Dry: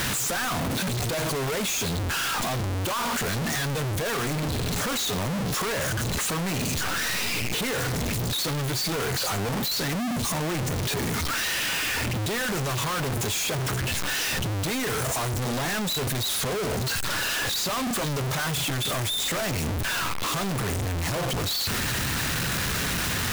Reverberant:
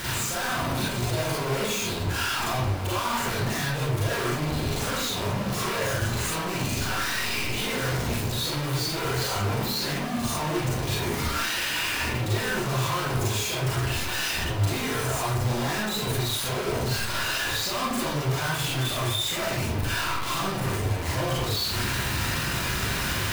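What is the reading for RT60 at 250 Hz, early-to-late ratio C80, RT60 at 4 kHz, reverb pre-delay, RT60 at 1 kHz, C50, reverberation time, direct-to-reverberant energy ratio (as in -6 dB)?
0.60 s, 4.0 dB, 0.40 s, 34 ms, 0.75 s, -1.5 dB, 0.70 s, -7.5 dB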